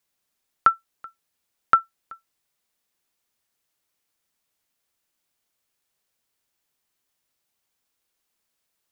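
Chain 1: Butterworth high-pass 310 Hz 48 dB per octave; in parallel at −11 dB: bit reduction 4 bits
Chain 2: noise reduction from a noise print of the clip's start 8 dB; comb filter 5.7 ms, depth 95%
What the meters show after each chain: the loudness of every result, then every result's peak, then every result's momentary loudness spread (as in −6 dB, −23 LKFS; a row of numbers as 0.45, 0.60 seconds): −20.0, −23.0 LKFS; −1.0, −4.5 dBFS; 3, 3 LU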